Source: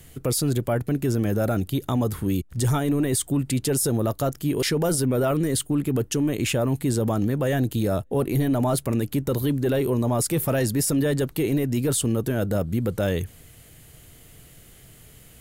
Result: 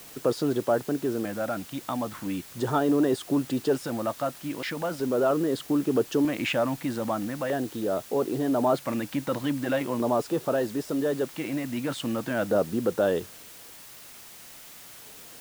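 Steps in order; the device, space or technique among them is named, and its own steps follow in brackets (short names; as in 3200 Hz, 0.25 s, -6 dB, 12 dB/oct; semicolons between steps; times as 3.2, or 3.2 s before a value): shortwave radio (BPF 320–2500 Hz; tremolo 0.32 Hz, depth 45%; LFO notch square 0.4 Hz 410–2200 Hz; white noise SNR 19 dB); gain +4.5 dB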